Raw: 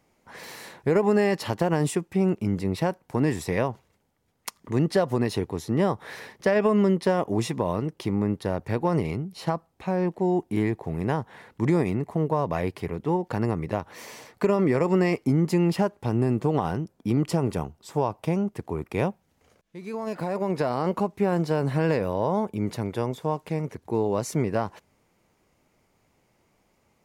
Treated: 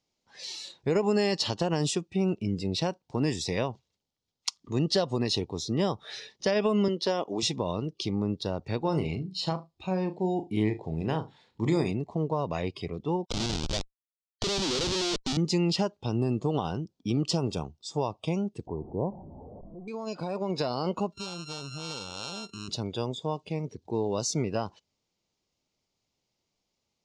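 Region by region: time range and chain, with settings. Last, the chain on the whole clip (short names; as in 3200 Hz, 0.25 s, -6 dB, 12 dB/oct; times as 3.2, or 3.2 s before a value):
6.88–7.43 HPF 260 Hz + high shelf 11000 Hz -8 dB
8.83–11.92 notch 5900 Hz, Q 9.6 + flutter echo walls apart 6.4 m, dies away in 0.24 s
13.25–15.37 Butterworth band-pass 420 Hz, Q 0.61 + Schmitt trigger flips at -33.5 dBFS
18.67–19.88 delta modulation 64 kbps, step -32.5 dBFS + elliptic low-pass 1000 Hz, stop band 50 dB
21.12–22.68 sample sorter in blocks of 32 samples + compressor 2.5:1, threshold -37 dBFS
whole clip: LPF 6500 Hz 24 dB/oct; spectral noise reduction 13 dB; resonant high shelf 2700 Hz +11.5 dB, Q 1.5; gain -4 dB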